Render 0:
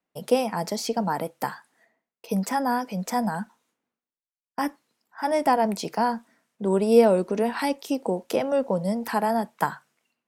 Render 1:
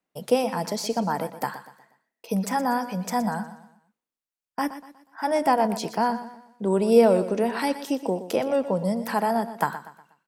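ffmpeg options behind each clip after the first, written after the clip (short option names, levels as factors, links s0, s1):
-af "aecho=1:1:121|242|363|484:0.224|0.0873|0.0341|0.0133"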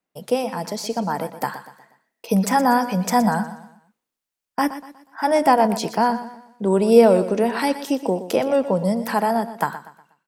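-af "dynaudnorm=f=330:g=9:m=2.51"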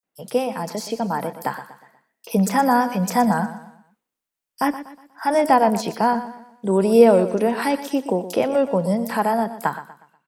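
-filter_complex "[0:a]acrossover=split=4700[s0][s1];[s0]adelay=30[s2];[s2][s1]amix=inputs=2:normalize=0"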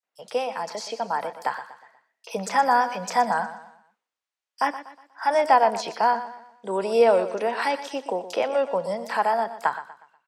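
-filter_complex "[0:a]acrossover=split=490 7500:gain=0.126 1 0.0708[s0][s1][s2];[s0][s1][s2]amix=inputs=3:normalize=0"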